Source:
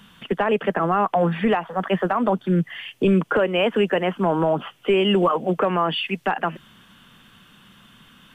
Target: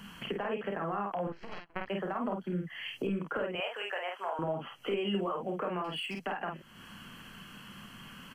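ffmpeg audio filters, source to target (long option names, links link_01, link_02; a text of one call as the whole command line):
ffmpeg -i in.wav -filter_complex "[0:a]asettb=1/sr,asplit=3[link_01][link_02][link_03];[link_01]atrim=end=3.554[link_04];[link_02]atrim=start=3.55:end=4.39,asetpts=PTS-STARTPTS,afade=type=in:duration=0.004:curve=qsin,afade=type=out:start_time=0.836:duration=0.004:curve=qsin,highpass=frequency=630:width=0.5412,highpass=frequency=630:width=1.3066[link_05];[link_03]atrim=start=4.386[link_06];[link_04][link_05]acrossfade=duration=0.004:curve1=hsin:curve2=qsin[link_07];[link_07][link_06]acrossfade=duration=0.004:curve1=qsin:curve2=hsin,acompressor=threshold=-39dB:ratio=3,asettb=1/sr,asplit=3[link_08][link_09][link_10];[link_08]atrim=end=1.274[link_11];[link_09]atrim=start=1.27:end=1.88,asetpts=PTS-STARTPTS,afade=type=in:duration=0.004:curve=qsin,afade=type=out:start_time=0.606:duration=0.004:curve=qsin,aeval=exprs='0.0708*(cos(1*acos(clip(val(0)/0.0708,-1,1)))-cos(1*PI/2))+0.0282*(cos(2*acos(clip(val(0)/0.0708,-1,1)))-cos(2*PI/2))+0.0251*(cos(3*acos(clip(val(0)/0.0708,-1,1)))-cos(3*PI/2))':channel_layout=same[link_12];[link_10]atrim=start=1.876[link_13];[link_11][link_12]acrossfade=duration=0.004:curve1=hsin:curve2=qsin[link_14];[link_14][link_13]acrossfade=duration=0.004:curve1=qsin:curve2=hsin,asettb=1/sr,asplit=3[link_15][link_16][link_17];[link_15]atrim=end=5.844[link_18];[link_16]atrim=start=5.84:end=6.26,asetpts=PTS-STARTPTS,afade=type=in:duration=0.004:curve=qsin,afade=type=out:start_time=0.416:duration=0.004:curve=qsin,volume=34.5dB,asoftclip=hard,volume=-34.5dB[link_19];[link_17]atrim=start=6.256[link_20];[link_18][link_19]acrossfade=duration=0.004:curve1=hsin:curve2=qsin[link_21];[link_21][link_20]acrossfade=duration=0.004:curve1=qsin:curve2=hsin,asuperstop=centerf=3600:order=8:qfactor=6.8,aecho=1:1:30|50:0.376|0.668" out.wav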